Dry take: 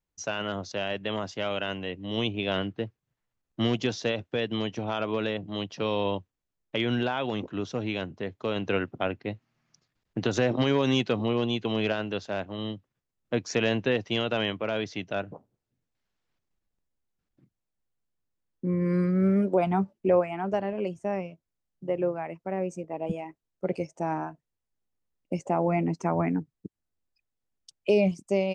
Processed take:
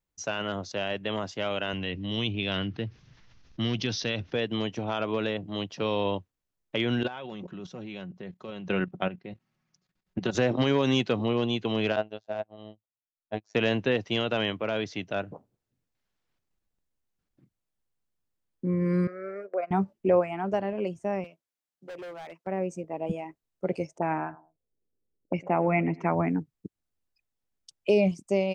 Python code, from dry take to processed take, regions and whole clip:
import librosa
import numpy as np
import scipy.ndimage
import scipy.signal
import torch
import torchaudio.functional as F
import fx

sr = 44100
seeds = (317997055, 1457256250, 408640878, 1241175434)

y = fx.chain(x, sr, fx.steep_lowpass(hz=6100.0, slope=72),
    fx.peak_eq(hz=620.0, db=-9.0, octaves=2.5),
    fx.env_flatten(amount_pct=50), at=(1.73, 4.33))
y = fx.chain(y, sr, fx.peak_eq(hz=180.0, db=9.5, octaves=0.22),
    fx.comb(ms=5.4, depth=0.4),
    fx.level_steps(step_db=13), at=(7.03, 10.35))
y = fx.chain(y, sr, fx.peak_eq(hz=680.0, db=13.5, octaves=0.52),
    fx.robotise(hz=107.0),
    fx.upward_expand(threshold_db=-40.0, expansion=2.5), at=(11.96, 13.55))
y = fx.chain(y, sr, fx.transient(attack_db=-3, sustain_db=-11),
    fx.bandpass_edges(low_hz=520.0, high_hz=3900.0),
    fx.fixed_phaser(hz=900.0, stages=6), at=(19.07, 19.71))
y = fx.chain(y, sr, fx.highpass(hz=770.0, slope=6),
    fx.clip_hard(threshold_db=-38.0), at=(21.24, 22.47))
y = fx.chain(y, sr, fx.echo_feedback(ms=104, feedback_pct=22, wet_db=-21.5),
    fx.envelope_lowpass(base_hz=410.0, top_hz=2300.0, q=2.6, full_db=-28.0, direction='up'), at=(23.98, 26.15))